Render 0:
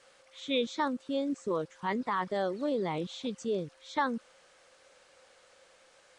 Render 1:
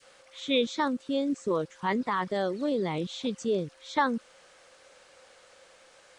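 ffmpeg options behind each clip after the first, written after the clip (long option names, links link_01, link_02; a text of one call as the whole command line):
ffmpeg -i in.wav -af "adynamicequalizer=threshold=0.00562:dfrequency=880:dqfactor=0.72:tfrequency=880:tqfactor=0.72:attack=5:release=100:ratio=0.375:range=2.5:mode=cutabove:tftype=bell,volume=4.5dB" out.wav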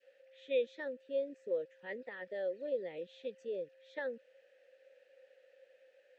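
ffmpeg -i in.wav -filter_complex "[0:a]asplit=3[link_01][link_02][link_03];[link_01]bandpass=frequency=530:width_type=q:width=8,volume=0dB[link_04];[link_02]bandpass=frequency=1840:width_type=q:width=8,volume=-6dB[link_05];[link_03]bandpass=frequency=2480:width_type=q:width=8,volume=-9dB[link_06];[link_04][link_05][link_06]amix=inputs=3:normalize=0,volume=-1.5dB" out.wav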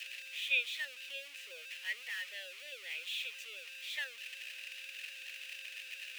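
ffmpeg -i in.wav -af "aeval=exprs='val(0)+0.5*0.00447*sgn(val(0))':channel_layout=same,highpass=frequency=2600:width_type=q:width=4.3,volume=5dB" out.wav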